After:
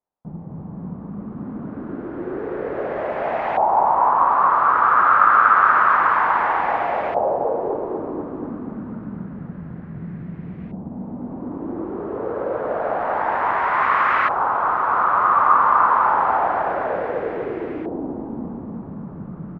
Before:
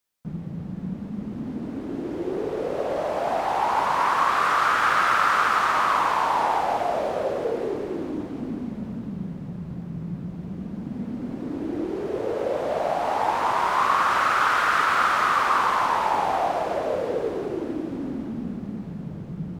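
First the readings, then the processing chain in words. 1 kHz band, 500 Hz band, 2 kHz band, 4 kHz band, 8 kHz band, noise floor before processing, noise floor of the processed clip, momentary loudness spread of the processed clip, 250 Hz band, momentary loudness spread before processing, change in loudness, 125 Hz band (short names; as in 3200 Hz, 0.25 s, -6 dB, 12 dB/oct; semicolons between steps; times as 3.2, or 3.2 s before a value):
+5.0 dB, +2.5 dB, +2.5 dB, under -10 dB, under -25 dB, -36 dBFS, -35 dBFS, 19 LU, +0.5 dB, 14 LU, +5.5 dB, 0.0 dB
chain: feedback echo 0.243 s, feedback 51%, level -4 dB; LFO low-pass saw up 0.28 Hz 800–2200 Hz; gain -1.5 dB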